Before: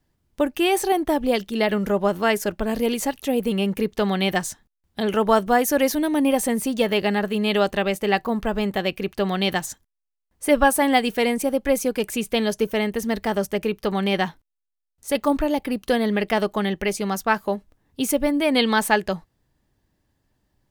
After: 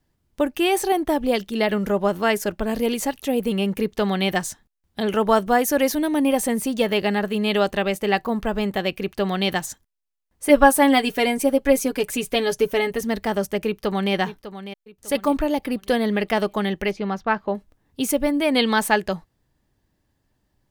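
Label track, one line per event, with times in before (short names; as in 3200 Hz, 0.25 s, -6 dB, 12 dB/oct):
10.490000	13.010000	comb 7.1 ms
13.660000	14.130000	echo throw 0.6 s, feedback 35%, level -12.5 dB
16.910000	17.550000	air absorption 250 m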